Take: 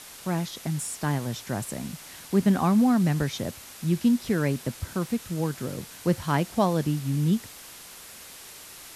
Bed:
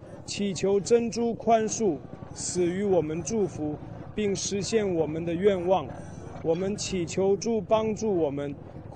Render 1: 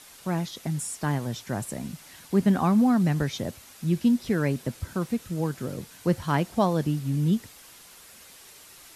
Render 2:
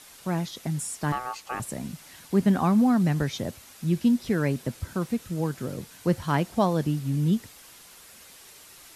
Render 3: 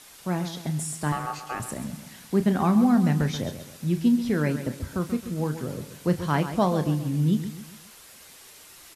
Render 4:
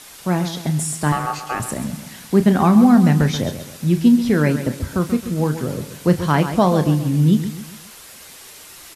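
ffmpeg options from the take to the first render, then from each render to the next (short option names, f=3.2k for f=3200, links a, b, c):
-af "afftdn=nr=6:nf=-45"
-filter_complex "[0:a]asettb=1/sr,asplit=3[a][b][c];[a]atrim=end=1.124[d];[b]atrim=start=1.12:end=1.6,asetpts=PTS-STARTPTS,afade=t=in:d=0.004:c=qsin,afade=t=out:st=0.476:d=0.004:c=qsin,aeval=exprs='val(0)*sin(2*PI*1000*n/s)':c=same[e];[c]atrim=start=1.596[f];[d][e]acrossfade=d=0.004:c1=hsin:c2=qsin[g];[g][f]acrossfade=d=0.004:c1=qsin:c2=hsin"
-filter_complex "[0:a]asplit=2[a][b];[b]adelay=33,volume=-11.5dB[c];[a][c]amix=inputs=2:normalize=0,asplit=2[d][e];[e]aecho=0:1:134|268|402|536:0.282|0.118|0.0497|0.0209[f];[d][f]amix=inputs=2:normalize=0"
-af "volume=8dB,alimiter=limit=-3dB:level=0:latency=1"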